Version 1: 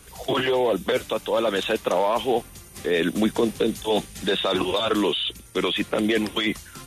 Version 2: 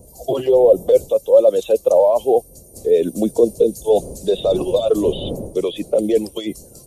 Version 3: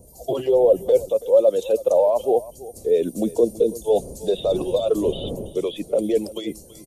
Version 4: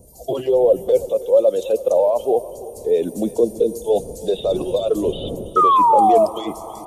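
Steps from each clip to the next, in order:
spectral dynamics exaggerated over time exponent 1.5; wind on the microphone 250 Hz −40 dBFS; drawn EQ curve 280 Hz 0 dB, 550 Hz +13 dB, 1,600 Hz −21 dB, 2,600 Hz −11 dB, 7,200 Hz +4 dB; level +2.5 dB
single-tap delay 329 ms −18 dB; level −4 dB
sound drawn into the spectrogram fall, 0:05.56–0:06.26, 620–1,300 Hz −14 dBFS; on a send at −16.5 dB: high-frequency loss of the air 250 metres + convolution reverb RT60 5.5 s, pre-delay 113 ms; on the sum: level +1 dB

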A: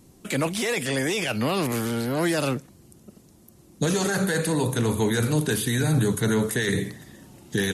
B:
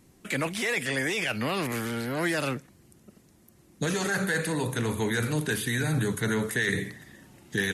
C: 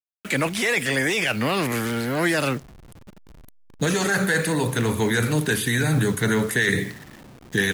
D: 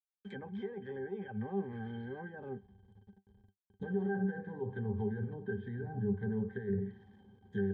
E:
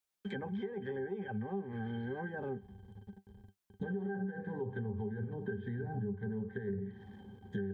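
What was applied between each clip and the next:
parametric band 1,900 Hz +7.5 dB 1.1 octaves; level −5.5 dB
hold until the input has moved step −45.5 dBFS; level +6 dB
treble cut that deepens with the level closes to 950 Hz, closed at −18 dBFS; resonances in every octave G, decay 0.11 s; level −6 dB
downward compressor 5 to 1, threshold −44 dBFS, peak gain reduction 14.5 dB; level +8 dB

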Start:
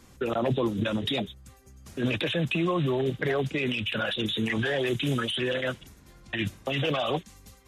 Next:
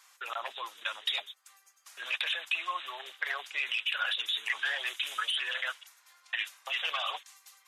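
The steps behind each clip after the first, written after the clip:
high-pass filter 960 Hz 24 dB per octave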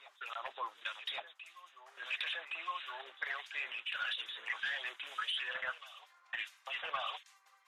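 backwards echo 1,117 ms −15 dB
mid-hump overdrive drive 9 dB, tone 1,300 Hz, clips at −15.5 dBFS
two-band tremolo in antiphase 1.6 Hz, depth 70%, crossover 1,800 Hz
level −1 dB

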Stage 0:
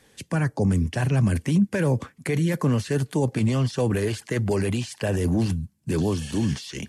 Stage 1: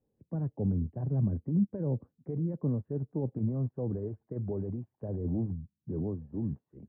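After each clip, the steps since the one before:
Bessel low-pass filter 510 Hz, order 4
expander for the loud parts 1.5 to 1, over −39 dBFS
level −6 dB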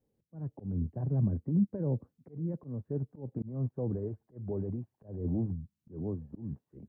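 volume swells 223 ms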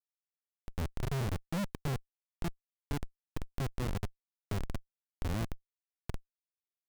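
comparator with hysteresis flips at −29 dBFS
level +2.5 dB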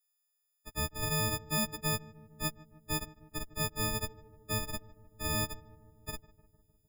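every partial snapped to a pitch grid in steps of 6 semitones
feedback echo with a low-pass in the loop 152 ms, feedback 72%, low-pass 1,100 Hz, level −18 dB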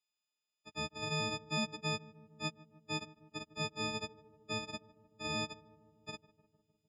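loudspeaker in its box 170–6,200 Hz, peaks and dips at 180 Hz +5 dB, 1,700 Hz −8 dB, 2,800 Hz +10 dB
level −2.5 dB

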